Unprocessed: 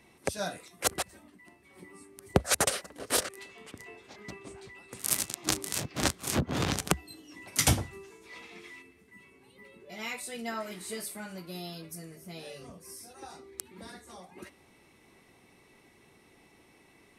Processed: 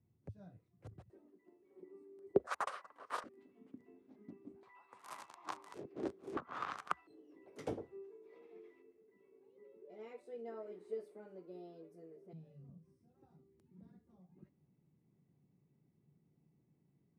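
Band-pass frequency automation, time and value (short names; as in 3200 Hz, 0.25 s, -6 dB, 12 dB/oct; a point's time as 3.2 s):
band-pass, Q 4.3
110 Hz
from 1.1 s 390 Hz
from 2.47 s 1100 Hz
from 3.24 s 260 Hz
from 4.63 s 1000 Hz
from 5.74 s 390 Hz
from 6.37 s 1200 Hz
from 7.07 s 430 Hz
from 12.33 s 150 Hz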